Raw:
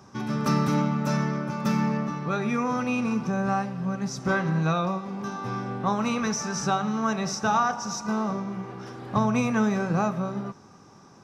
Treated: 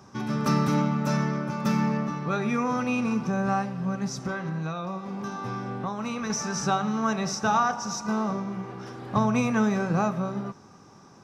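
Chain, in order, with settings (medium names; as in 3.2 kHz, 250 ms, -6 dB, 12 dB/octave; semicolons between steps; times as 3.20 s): 4.19–6.30 s: compression 6:1, threshold -28 dBFS, peak gain reduction 8.5 dB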